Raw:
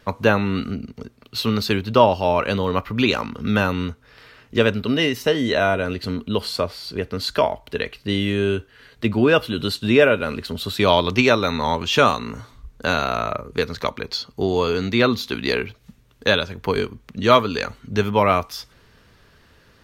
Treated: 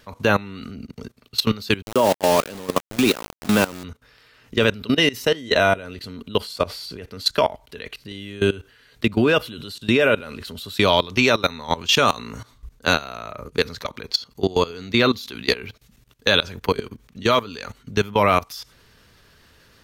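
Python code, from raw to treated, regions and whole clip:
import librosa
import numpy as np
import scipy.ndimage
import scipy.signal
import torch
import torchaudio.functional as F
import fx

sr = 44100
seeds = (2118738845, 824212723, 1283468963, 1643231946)

y = fx.chain(x, sr, fx.highpass(hz=210.0, slope=12),
    fx.tilt_shelf(db=5.5, hz=810.0),
    fx.sample_gate(floor_db=-22.0), at=(1.82, 3.84))
y = fx.high_shelf(y, sr, hz=3200.0, db=7.5)
y = fx.level_steps(y, sr, step_db=19)
y = y * librosa.db_to_amplitude(3.0)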